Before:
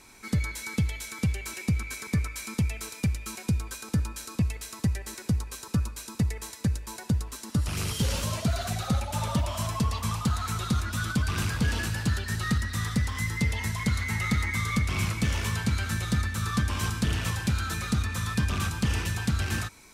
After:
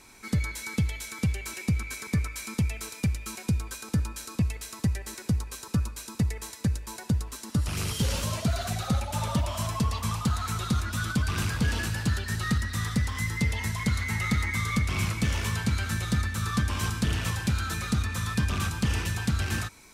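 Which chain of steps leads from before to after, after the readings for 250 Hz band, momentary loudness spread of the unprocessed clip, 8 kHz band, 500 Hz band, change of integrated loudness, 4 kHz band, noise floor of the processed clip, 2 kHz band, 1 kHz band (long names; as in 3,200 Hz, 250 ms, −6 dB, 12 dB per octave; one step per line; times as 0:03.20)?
0.0 dB, 3 LU, 0.0 dB, 0.0 dB, 0.0 dB, 0.0 dB, −46 dBFS, 0.0 dB, 0.0 dB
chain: surface crackle 22 per second −51 dBFS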